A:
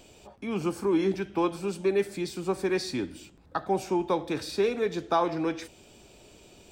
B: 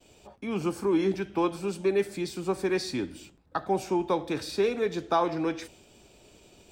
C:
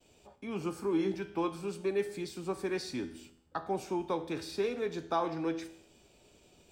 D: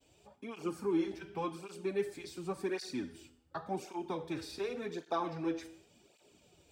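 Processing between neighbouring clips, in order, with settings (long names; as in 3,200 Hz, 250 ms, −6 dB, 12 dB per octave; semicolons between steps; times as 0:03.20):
downward expander −50 dBFS
tuned comb filter 82 Hz, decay 0.67 s, harmonics all, mix 60%
through-zero flanger with one copy inverted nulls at 0.89 Hz, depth 5.9 ms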